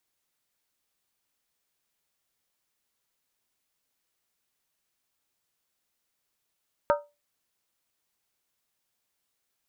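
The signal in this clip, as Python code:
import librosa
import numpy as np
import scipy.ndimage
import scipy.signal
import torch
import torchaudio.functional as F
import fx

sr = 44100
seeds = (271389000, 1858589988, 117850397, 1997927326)

y = fx.strike_skin(sr, length_s=0.63, level_db=-17, hz=584.0, decay_s=0.25, tilt_db=3.5, modes=5)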